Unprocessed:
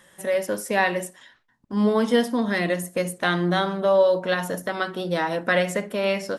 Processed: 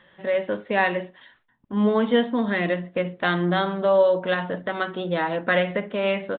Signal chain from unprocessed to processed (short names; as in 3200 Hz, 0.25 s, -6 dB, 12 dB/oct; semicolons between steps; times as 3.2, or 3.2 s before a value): downsampling 8000 Hz